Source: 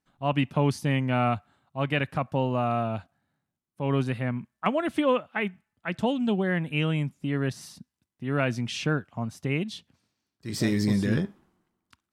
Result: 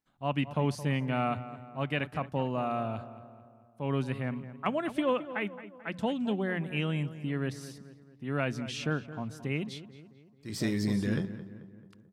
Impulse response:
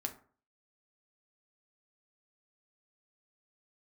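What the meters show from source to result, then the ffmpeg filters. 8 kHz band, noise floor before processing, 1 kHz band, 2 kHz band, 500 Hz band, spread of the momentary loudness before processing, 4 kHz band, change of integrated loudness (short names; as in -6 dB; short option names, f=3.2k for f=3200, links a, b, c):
-5.0 dB, under -85 dBFS, -5.0 dB, -5.0 dB, -5.0 dB, 11 LU, -5.0 dB, -5.0 dB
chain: -filter_complex "[0:a]bandreject=f=60:t=h:w=6,bandreject=f=120:t=h:w=6,bandreject=f=180:t=h:w=6,asplit=2[a][b];[b]adelay=219,lowpass=f=2.3k:p=1,volume=-13.5dB,asplit=2[c][d];[d]adelay=219,lowpass=f=2.3k:p=1,volume=0.53,asplit=2[e][f];[f]adelay=219,lowpass=f=2.3k:p=1,volume=0.53,asplit=2[g][h];[h]adelay=219,lowpass=f=2.3k:p=1,volume=0.53,asplit=2[i][j];[j]adelay=219,lowpass=f=2.3k:p=1,volume=0.53[k];[a][c][e][g][i][k]amix=inputs=6:normalize=0,volume=-5dB"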